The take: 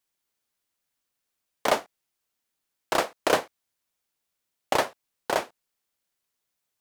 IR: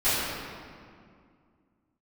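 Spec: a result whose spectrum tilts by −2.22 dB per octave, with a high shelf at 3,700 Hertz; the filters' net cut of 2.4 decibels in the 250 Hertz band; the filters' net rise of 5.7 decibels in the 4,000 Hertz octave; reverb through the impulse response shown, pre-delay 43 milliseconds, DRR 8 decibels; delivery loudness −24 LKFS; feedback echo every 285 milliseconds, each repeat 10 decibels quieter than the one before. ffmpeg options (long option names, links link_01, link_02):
-filter_complex "[0:a]equalizer=frequency=250:width_type=o:gain=-3.5,highshelf=frequency=3700:gain=6,equalizer=frequency=4000:width_type=o:gain=3.5,aecho=1:1:285|570|855|1140:0.316|0.101|0.0324|0.0104,asplit=2[link_01][link_02];[1:a]atrim=start_sample=2205,adelay=43[link_03];[link_02][link_03]afir=irnorm=-1:irlink=0,volume=-23.5dB[link_04];[link_01][link_04]amix=inputs=2:normalize=0,volume=3dB"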